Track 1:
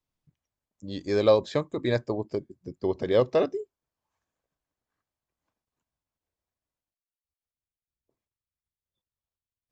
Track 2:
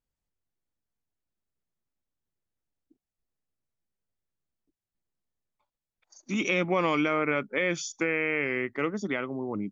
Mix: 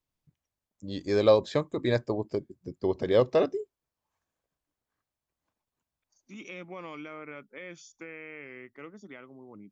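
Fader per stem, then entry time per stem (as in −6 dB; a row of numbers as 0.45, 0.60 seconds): −0.5, −16.0 decibels; 0.00, 0.00 seconds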